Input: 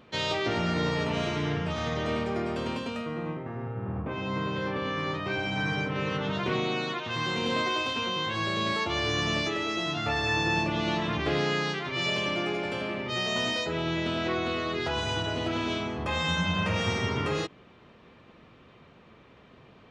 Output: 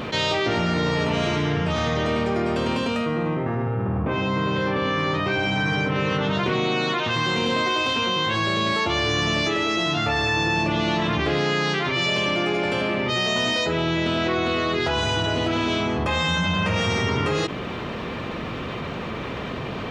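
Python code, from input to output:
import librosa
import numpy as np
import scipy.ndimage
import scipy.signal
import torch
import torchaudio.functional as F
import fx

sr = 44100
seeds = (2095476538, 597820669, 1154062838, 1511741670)

y = fx.env_flatten(x, sr, amount_pct=70)
y = F.gain(torch.from_numpy(y), 3.5).numpy()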